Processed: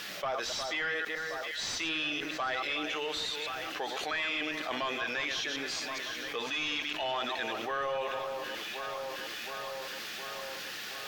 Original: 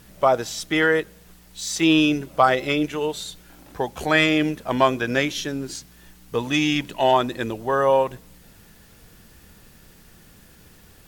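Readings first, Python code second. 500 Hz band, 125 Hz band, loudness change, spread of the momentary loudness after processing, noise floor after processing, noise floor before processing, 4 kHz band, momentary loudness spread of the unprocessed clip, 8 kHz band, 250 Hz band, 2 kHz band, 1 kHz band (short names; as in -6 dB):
-14.5 dB, -23.0 dB, -12.5 dB, 7 LU, -41 dBFS, -51 dBFS, -5.0 dB, 12 LU, -8.0 dB, -19.5 dB, -7.5 dB, -12.0 dB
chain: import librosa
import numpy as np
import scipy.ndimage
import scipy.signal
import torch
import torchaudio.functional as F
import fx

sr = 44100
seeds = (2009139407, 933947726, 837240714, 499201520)

p1 = fx.reverse_delay(x, sr, ms=105, wet_db=-10.0)
p2 = fx.highpass(p1, sr, hz=220.0, slope=6)
p3 = np.diff(p2, prepend=0.0)
p4 = fx.notch(p3, sr, hz=960.0, q=7.7)
p5 = fx.rider(p4, sr, range_db=4, speed_s=0.5)
p6 = p4 + (p5 * librosa.db_to_amplitude(0.0))
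p7 = 10.0 ** (-27.0 / 20.0) * np.tanh(p6 / 10.0 ** (-27.0 / 20.0))
p8 = fx.air_absorb(p7, sr, metres=250.0)
p9 = p8 + fx.echo_alternate(p8, sr, ms=359, hz=1900.0, feedback_pct=74, wet_db=-13.0, dry=0)
y = fx.env_flatten(p9, sr, amount_pct=70)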